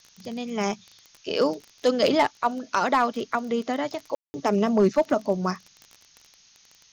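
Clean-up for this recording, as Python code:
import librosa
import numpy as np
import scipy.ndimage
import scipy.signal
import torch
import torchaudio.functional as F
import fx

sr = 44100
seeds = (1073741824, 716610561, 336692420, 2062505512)

y = fx.fix_declip(x, sr, threshold_db=-12.0)
y = fx.fix_declick_ar(y, sr, threshold=6.5)
y = fx.fix_ambience(y, sr, seeds[0], print_start_s=6.34, print_end_s=6.84, start_s=4.15, end_s=4.34)
y = fx.noise_reduce(y, sr, print_start_s=6.34, print_end_s=6.84, reduce_db=12.0)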